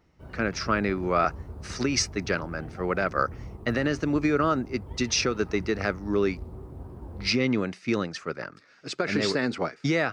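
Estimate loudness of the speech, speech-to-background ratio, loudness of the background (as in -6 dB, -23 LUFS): -27.5 LUFS, 15.0 dB, -42.5 LUFS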